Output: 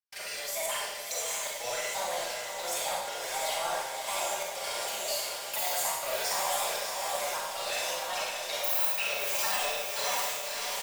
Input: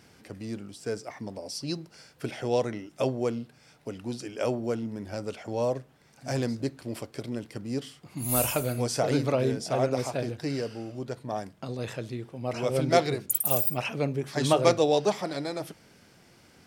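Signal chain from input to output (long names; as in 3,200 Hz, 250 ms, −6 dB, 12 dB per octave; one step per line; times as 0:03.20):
pitch shifter gated in a rhythm +6.5 semitones, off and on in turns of 570 ms
reversed playback
downward compressor 4 to 1, threshold −36 dBFS, peak gain reduction 17 dB
reversed playback
Butterworth high-pass 580 Hz 48 dB per octave
parametric band 780 Hz −11 dB 2.2 octaves
comb filter 5 ms, depth 37%
power curve on the samples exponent 0.5
phase-vocoder stretch with locked phases 0.65×
gate pattern ".xxxxxx..xxx" 122 BPM −60 dB
on a send: feedback delay with all-pass diffusion 598 ms, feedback 56%, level −4.5 dB
on the sum: four-comb reverb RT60 0.9 s, combs from 33 ms, DRR −3 dB
level +2 dB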